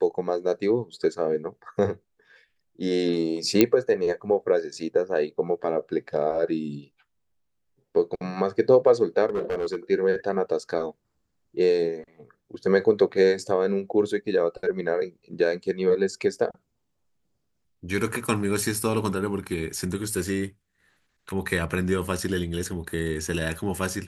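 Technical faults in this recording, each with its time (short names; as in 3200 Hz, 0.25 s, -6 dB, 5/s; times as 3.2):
3.61 pop -3 dBFS
9.26–9.76 clipped -22.5 dBFS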